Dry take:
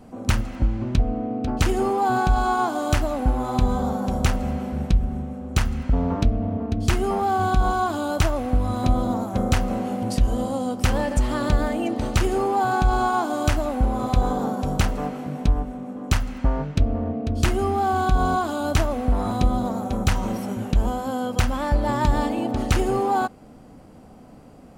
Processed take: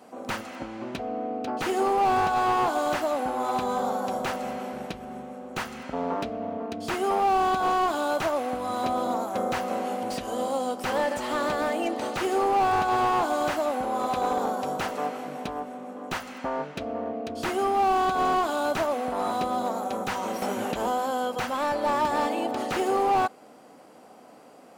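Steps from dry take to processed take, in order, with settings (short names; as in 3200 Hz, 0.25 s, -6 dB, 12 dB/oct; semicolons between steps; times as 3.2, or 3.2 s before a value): HPF 440 Hz 12 dB/oct; 20.42–21.06 upward compressor, threshold -23 dBFS; slew limiter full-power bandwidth 64 Hz; gain +2 dB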